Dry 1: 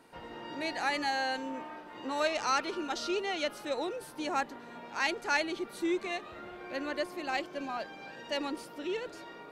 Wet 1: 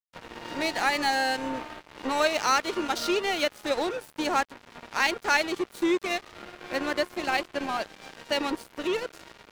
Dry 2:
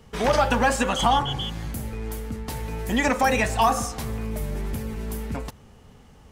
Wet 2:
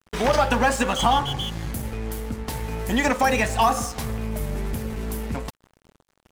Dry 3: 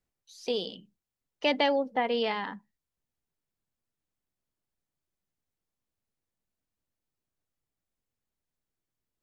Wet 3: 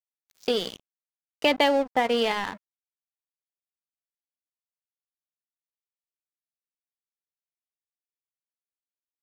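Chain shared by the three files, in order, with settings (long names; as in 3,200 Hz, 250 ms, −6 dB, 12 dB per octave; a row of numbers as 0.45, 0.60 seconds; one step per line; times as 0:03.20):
in parallel at +2 dB: downward compressor 20 to 1, threshold −34 dBFS
on the sum: dead-zone distortion −37 dBFS
normalise the peak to −9 dBFS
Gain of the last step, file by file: +4.5, 0.0, +3.5 decibels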